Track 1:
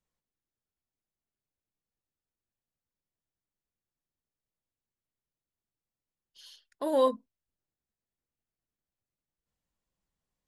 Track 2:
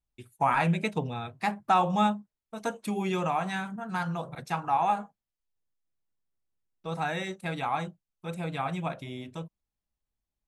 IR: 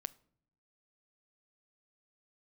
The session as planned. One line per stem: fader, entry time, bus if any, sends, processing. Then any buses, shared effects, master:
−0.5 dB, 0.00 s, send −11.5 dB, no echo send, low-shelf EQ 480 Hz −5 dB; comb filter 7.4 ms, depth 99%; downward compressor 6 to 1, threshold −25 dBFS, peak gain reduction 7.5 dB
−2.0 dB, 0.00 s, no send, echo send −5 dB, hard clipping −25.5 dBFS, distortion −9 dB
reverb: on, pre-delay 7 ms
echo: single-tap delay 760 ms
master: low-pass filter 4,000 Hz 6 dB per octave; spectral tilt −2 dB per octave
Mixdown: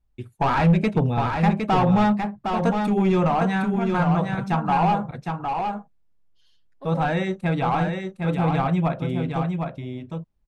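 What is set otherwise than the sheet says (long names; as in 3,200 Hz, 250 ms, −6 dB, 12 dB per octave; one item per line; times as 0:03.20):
stem 1 −0.5 dB → −11.5 dB
stem 2 −2.0 dB → +7.5 dB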